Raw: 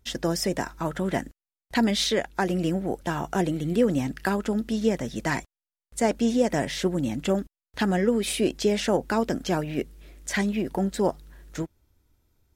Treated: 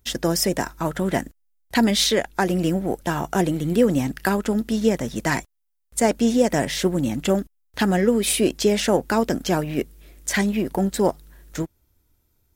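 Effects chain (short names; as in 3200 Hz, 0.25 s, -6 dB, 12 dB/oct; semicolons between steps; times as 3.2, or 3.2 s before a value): high shelf 9500 Hz +11.5 dB; in parallel at -4.5 dB: backlash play -33.5 dBFS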